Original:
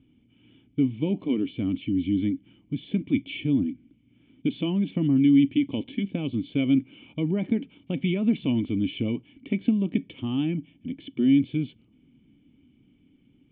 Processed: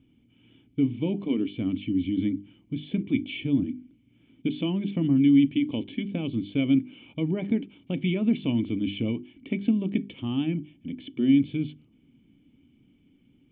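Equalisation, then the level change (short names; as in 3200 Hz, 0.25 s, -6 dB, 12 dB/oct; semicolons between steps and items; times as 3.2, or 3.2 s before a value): notches 50/100/150/200/250/300/350/400 Hz; 0.0 dB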